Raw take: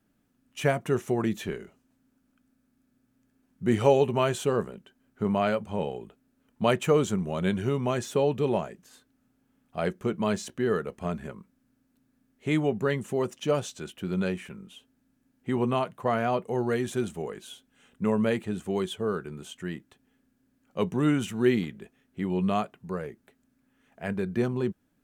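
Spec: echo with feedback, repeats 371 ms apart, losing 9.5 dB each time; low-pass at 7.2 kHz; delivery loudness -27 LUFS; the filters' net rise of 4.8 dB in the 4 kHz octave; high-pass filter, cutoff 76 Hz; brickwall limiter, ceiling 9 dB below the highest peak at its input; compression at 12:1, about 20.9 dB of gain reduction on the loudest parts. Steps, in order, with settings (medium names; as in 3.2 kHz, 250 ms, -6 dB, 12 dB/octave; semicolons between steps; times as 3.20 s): high-pass 76 Hz; low-pass 7.2 kHz; peaking EQ 4 kHz +7 dB; compression 12:1, threshold -36 dBFS; peak limiter -30.5 dBFS; feedback delay 371 ms, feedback 33%, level -9.5 dB; trim +16 dB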